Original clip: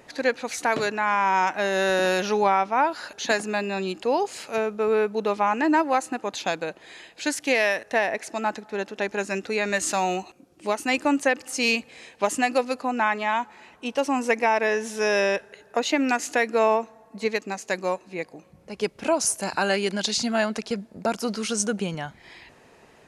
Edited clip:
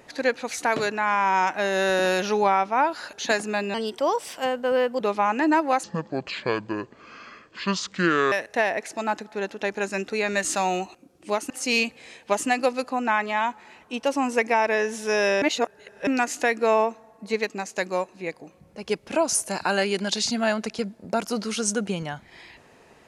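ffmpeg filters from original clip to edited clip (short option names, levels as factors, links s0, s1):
-filter_complex "[0:a]asplit=8[s0][s1][s2][s3][s4][s5][s6][s7];[s0]atrim=end=3.744[s8];[s1]atrim=start=3.74:end=5.22,asetpts=PTS-STARTPTS,asetrate=51597,aresample=44100[s9];[s2]atrim=start=5.216:end=6.054[s10];[s3]atrim=start=6.05:end=7.69,asetpts=PTS-STARTPTS,asetrate=29106,aresample=44100[s11];[s4]atrim=start=7.686:end=10.872[s12];[s5]atrim=start=11.418:end=15.342[s13];[s6]atrim=start=15.338:end=15.992,asetpts=PTS-STARTPTS,areverse[s14];[s7]atrim=start=15.988[s15];[s8][s9]acrossfade=d=0.004:c1=hsin:c2=hsin[s16];[s16][s10]acrossfade=d=0.004:c1=hsin:c2=hsin[s17];[s17][s11]acrossfade=d=0.004:c1=hsin:c2=hsin[s18];[s18][s12]acrossfade=d=0.004:c1=hsin:c2=hsin[s19];[s19][s13]acrossfade=d=0.004:c1=hsin:c2=hsin[s20];[s20][s14]acrossfade=d=0.004:c1=hsin:c2=hsin[s21];[s21][s15]acrossfade=d=0.004:c1=hsin:c2=hsin"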